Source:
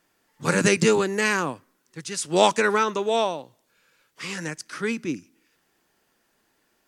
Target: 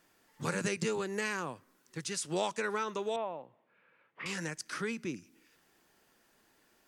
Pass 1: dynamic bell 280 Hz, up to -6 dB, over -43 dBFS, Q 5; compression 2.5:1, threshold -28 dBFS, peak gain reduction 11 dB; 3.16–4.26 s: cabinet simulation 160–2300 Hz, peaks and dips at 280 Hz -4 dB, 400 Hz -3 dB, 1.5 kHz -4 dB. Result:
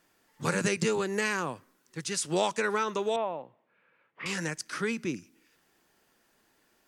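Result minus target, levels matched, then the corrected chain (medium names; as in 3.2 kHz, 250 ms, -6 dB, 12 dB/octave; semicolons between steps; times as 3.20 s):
compression: peak gain reduction -5.5 dB
dynamic bell 280 Hz, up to -6 dB, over -43 dBFS, Q 5; compression 2.5:1, threshold -37 dBFS, peak gain reduction 16.5 dB; 3.16–4.26 s: cabinet simulation 160–2300 Hz, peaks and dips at 280 Hz -4 dB, 400 Hz -3 dB, 1.5 kHz -4 dB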